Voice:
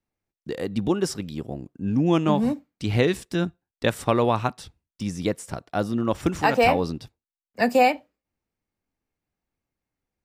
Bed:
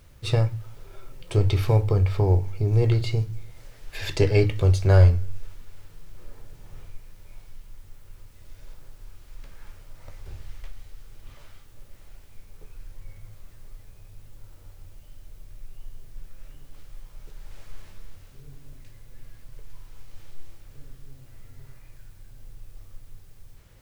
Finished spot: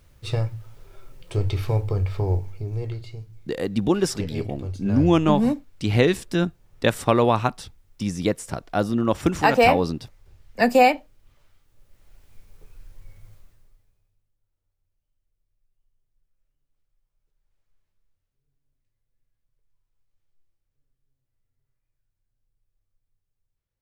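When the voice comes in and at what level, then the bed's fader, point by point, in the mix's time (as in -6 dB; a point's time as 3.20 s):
3.00 s, +2.5 dB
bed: 2.35 s -3 dB
3.10 s -13 dB
11.64 s -13 dB
12.31 s -3.5 dB
13.33 s -3.5 dB
14.35 s -32.5 dB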